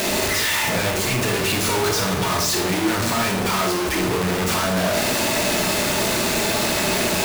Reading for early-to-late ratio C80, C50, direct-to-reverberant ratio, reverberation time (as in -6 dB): 9.0 dB, 5.0 dB, 1.5 dB, 0.65 s